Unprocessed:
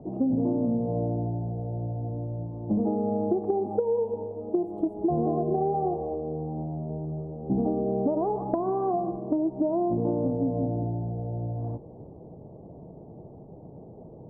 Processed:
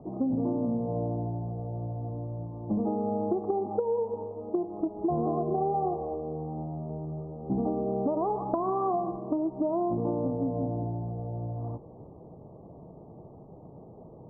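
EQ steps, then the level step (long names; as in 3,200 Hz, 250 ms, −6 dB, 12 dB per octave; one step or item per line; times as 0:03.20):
low-pass with resonance 1,200 Hz, resonance Q 4.6
high-frequency loss of the air 430 metres
−3.0 dB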